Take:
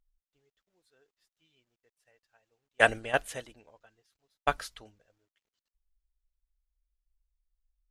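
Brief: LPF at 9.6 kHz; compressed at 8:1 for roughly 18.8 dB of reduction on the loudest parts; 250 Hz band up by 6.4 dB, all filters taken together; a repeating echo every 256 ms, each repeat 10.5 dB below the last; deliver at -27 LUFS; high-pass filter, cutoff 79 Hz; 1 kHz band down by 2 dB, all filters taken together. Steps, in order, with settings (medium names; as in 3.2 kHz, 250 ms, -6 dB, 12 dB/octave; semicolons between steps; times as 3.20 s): high-pass 79 Hz; low-pass 9.6 kHz; peaking EQ 250 Hz +8 dB; peaking EQ 1 kHz -4 dB; compression 8:1, threshold -37 dBFS; feedback delay 256 ms, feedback 30%, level -10.5 dB; trim +19 dB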